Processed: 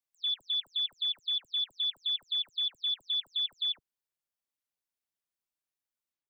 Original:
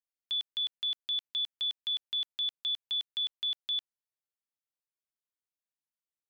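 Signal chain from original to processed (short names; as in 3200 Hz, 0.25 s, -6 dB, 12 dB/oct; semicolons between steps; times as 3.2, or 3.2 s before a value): spectral delay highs early, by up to 0.161 s; gain +1 dB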